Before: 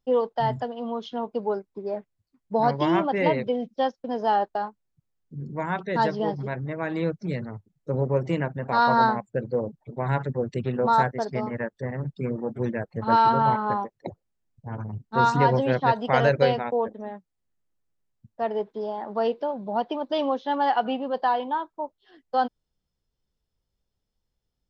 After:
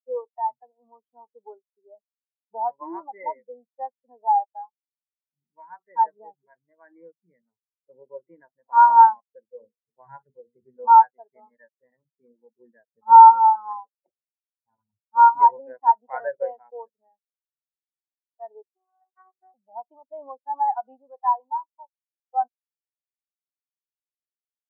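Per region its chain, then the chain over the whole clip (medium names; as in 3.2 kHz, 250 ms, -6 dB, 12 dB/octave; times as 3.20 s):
9.51–10.86 s: peaking EQ 100 Hz +6 dB 2 oct + hum notches 60/120/180/240/300/360/420/480 Hz
18.62–19.54 s: robot voice 375 Hz + transformer saturation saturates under 1.5 kHz
whole clip: graphic EQ 125/1000/2000/4000 Hz -12/+7/+10/-12 dB; spectral contrast expander 2.5:1; trim +1 dB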